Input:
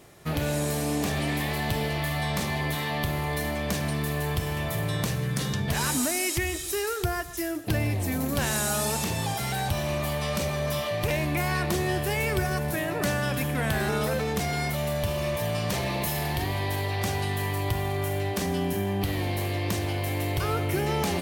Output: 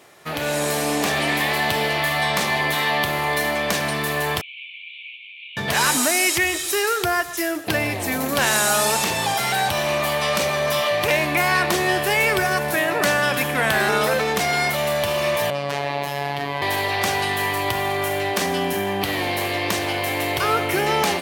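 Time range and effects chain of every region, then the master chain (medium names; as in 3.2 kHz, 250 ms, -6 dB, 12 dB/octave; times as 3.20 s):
4.41–5.57 s: CVSD coder 16 kbps + Chebyshev high-pass 2.2 kHz, order 10 + three-phase chorus
15.50–16.62 s: low-pass 2.1 kHz 6 dB/octave + robot voice 142 Hz
whole clip: high-pass 820 Hz 6 dB/octave; treble shelf 4.5 kHz -7 dB; level rider gain up to 5 dB; trim +8 dB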